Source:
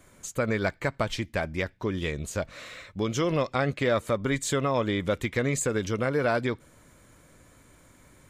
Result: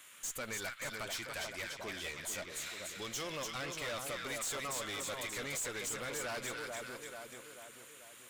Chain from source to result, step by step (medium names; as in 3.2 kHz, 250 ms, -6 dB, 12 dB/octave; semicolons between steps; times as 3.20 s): tilt EQ +4.5 dB/octave; two-band feedback delay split 1.2 kHz, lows 438 ms, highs 290 ms, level -6 dB; valve stage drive 29 dB, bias 0.4; band noise 1.1–3.6 kHz -54 dBFS; trim -7 dB